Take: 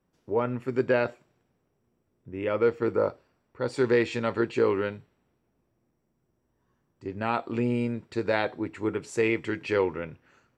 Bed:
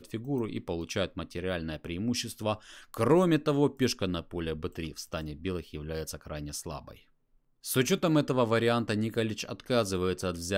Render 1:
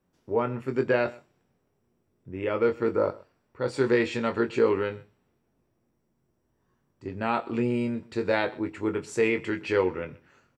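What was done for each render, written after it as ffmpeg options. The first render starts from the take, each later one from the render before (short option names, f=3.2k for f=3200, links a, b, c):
-filter_complex "[0:a]asplit=2[a][b];[b]adelay=22,volume=-8dB[c];[a][c]amix=inputs=2:normalize=0,aecho=1:1:127:0.0794"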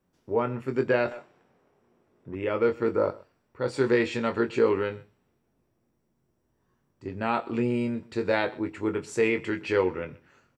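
-filter_complex "[0:a]asettb=1/sr,asplit=3[a][b][c];[a]atrim=end=1.114[d];[b]atrim=start=1.11:end=2.35,asetpts=PTS-STARTPTS,afade=t=in:d=0.004:c=qsin,afade=t=out:st=1.236:d=0.004:c=qsin,asplit=2[e][f];[f]highpass=f=720:p=1,volume=20dB,asoftclip=type=tanh:threshold=-24.5dB[g];[e][g]amix=inputs=2:normalize=0,lowpass=f=1.3k:p=1,volume=-6dB[h];[c]atrim=start=2.346[i];[d][h]acrossfade=d=0.004:c1=hsin:c2=qsin[j];[j][i]acrossfade=d=0.004:c1=qsin:c2=hsin"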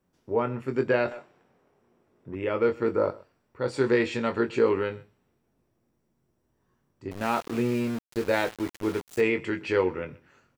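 -filter_complex "[0:a]asettb=1/sr,asplit=3[a][b][c];[a]atrim=end=7.114[d];[b]atrim=start=7.11:end=9.21,asetpts=PTS-STARTPTS,afade=t=in:d=0.004:c=qsin,afade=t=out:st=2.096:d=0.004:c=qsin,aeval=exprs='val(0)*gte(abs(val(0)),0.0188)':c=same[e];[c]atrim=start=9.206[f];[d][e]acrossfade=d=0.004:c1=hsin:c2=qsin[g];[g][f]acrossfade=d=0.004:c1=qsin:c2=hsin"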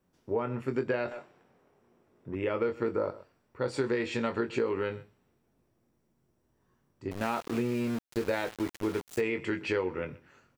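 -af "acompressor=threshold=-26dB:ratio=6"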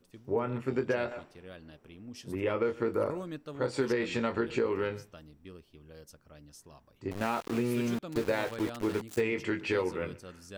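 -filter_complex "[1:a]volume=-15.5dB[a];[0:a][a]amix=inputs=2:normalize=0"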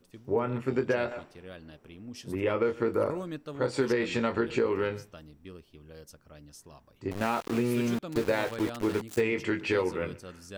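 -af "volume=2.5dB"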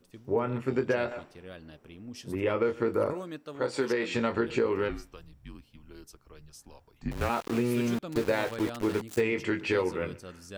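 -filter_complex "[0:a]asettb=1/sr,asplit=3[a][b][c];[a]atrim=end=3.134[d];[b]atrim=start=3.13:end=4.15,asetpts=PTS-STARTPTS,afade=t=in:d=0.004:c=qsin,afade=t=out:st=1.016:d=0.004:c=qsin,highpass=f=260:p=1[e];[c]atrim=start=4.146[f];[d][e]acrossfade=d=0.004:c1=hsin:c2=qsin[g];[g][f]acrossfade=d=0.004:c1=qsin:c2=hsin,asplit=3[h][i][j];[h]afade=t=out:st=4.88:d=0.02[k];[i]afreqshift=-140,afade=t=in:st=4.88:d=0.02,afade=t=out:st=7.28:d=0.02[l];[j]afade=t=in:st=7.28:d=0.02[m];[k][l][m]amix=inputs=3:normalize=0"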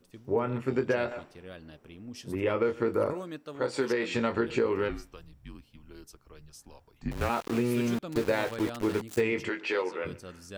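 -filter_complex "[0:a]asplit=3[a][b][c];[a]afade=t=out:st=9.48:d=0.02[d];[b]highpass=420,lowpass=6.4k,afade=t=in:st=9.48:d=0.02,afade=t=out:st=10.04:d=0.02[e];[c]afade=t=in:st=10.04:d=0.02[f];[d][e][f]amix=inputs=3:normalize=0"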